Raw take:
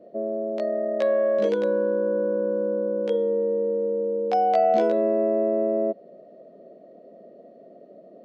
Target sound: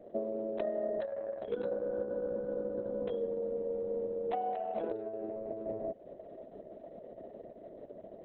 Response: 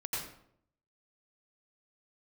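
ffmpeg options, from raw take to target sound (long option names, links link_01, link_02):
-af "acompressor=threshold=-31dB:ratio=16" -ar 48000 -c:a libopus -b:a 6k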